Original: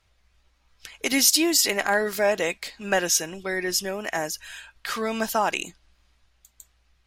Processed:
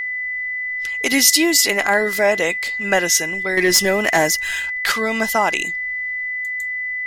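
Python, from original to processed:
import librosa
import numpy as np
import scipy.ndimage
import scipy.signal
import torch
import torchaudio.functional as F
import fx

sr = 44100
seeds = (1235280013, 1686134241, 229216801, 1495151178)

y = fx.leveller(x, sr, passes=2, at=(3.57, 4.92))
y = y + 10.0 ** (-27.0 / 20.0) * np.sin(2.0 * np.pi * 2000.0 * np.arange(len(y)) / sr)
y = F.gain(torch.from_numpy(y), 5.0).numpy()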